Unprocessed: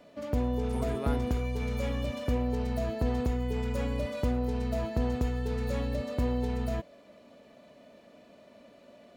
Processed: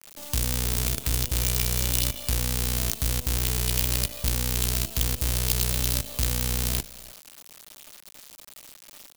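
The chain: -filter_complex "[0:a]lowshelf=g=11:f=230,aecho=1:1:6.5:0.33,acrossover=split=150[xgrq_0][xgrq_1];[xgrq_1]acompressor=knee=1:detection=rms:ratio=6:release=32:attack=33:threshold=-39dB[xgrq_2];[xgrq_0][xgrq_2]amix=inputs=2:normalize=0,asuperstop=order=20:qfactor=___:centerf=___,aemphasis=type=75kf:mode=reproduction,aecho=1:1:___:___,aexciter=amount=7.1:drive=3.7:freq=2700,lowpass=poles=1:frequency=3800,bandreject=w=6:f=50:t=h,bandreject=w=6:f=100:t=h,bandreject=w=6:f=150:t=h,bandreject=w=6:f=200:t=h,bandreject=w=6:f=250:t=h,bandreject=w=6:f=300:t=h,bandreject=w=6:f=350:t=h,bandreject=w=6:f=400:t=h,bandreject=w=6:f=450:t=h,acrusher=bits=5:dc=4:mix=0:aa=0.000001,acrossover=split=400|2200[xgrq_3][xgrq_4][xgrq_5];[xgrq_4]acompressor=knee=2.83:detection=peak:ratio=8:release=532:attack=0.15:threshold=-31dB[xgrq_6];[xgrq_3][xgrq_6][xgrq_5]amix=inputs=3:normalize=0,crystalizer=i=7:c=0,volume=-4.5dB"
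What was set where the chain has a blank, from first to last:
7.7, 740, 311, 0.158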